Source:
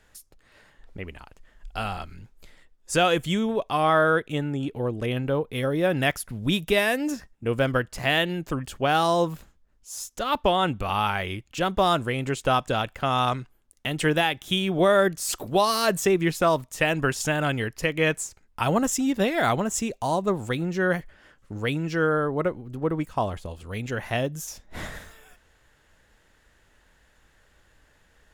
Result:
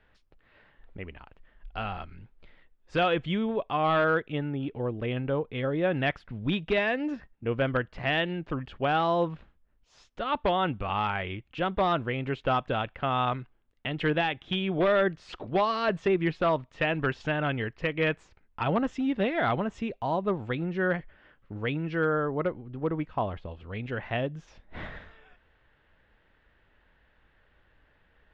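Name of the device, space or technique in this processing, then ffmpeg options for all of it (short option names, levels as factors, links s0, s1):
synthesiser wavefolder: -af "aeval=exprs='0.211*(abs(mod(val(0)/0.211+3,4)-2)-1)':c=same,lowpass=f=3300:w=0.5412,lowpass=f=3300:w=1.3066,volume=0.668"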